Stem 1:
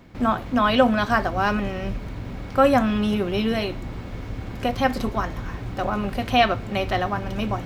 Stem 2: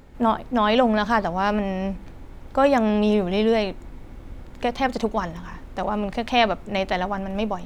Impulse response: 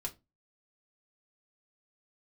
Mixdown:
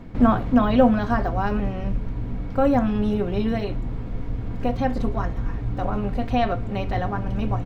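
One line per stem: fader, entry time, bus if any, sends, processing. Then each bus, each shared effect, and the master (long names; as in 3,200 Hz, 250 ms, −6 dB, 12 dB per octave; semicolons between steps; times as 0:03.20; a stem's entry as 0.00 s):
+2.0 dB, 0.00 s, send −9.5 dB, de-essing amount 95%; spectral tilt −3 dB per octave; automatic ducking −12 dB, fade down 1.50 s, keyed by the second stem
−12.5 dB, 8.3 ms, polarity flipped, no send, no processing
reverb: on, RT60 0.25 s, pre-delay 4 ms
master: low-shelf EQ 210 Hz −5 dB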